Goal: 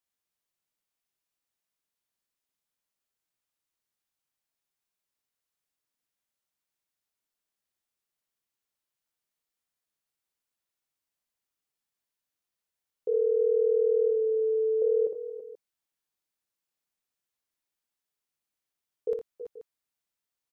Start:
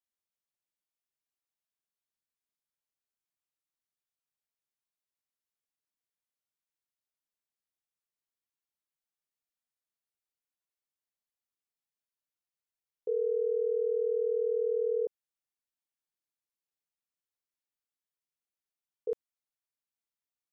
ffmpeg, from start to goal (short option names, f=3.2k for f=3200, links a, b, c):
-filter_complex "[0:a]asettb=1/sr,asplit=3[a][b][c];[a]atrim=end=14.084[d];[b]atrim=start=14.08:end=14.82,asetpts=PTS-STARTPTS,afade=t=in:d=0.004:c=qsin,afade=t=out:st=0.736:d=0.004:c=qsin,bandreject=f=60:t=h:w=6,bandreject=f=120:t=h:w=6,bandreject=f=180:t=h:w=6,bandreject=f=240:t=h:w=6,bandreject=f=300:t=h:w=6,bandreject=f=360:t=h:w=6,bandreject=f=420:t=h:w=6,bandreject=f=480:t=h:w=6[e];[c]atrim=start=14.816[f];[d][e]acrossfade=d=0.004:c1=hsin:c2=qsin[g];[g][f]acrossfade=d=0.004:c1=qsin:c2=hsin,aecho=1:1:59|83|325|335|482:0.562|0.211|0.2|0.237|0.141,volume=3.5dB"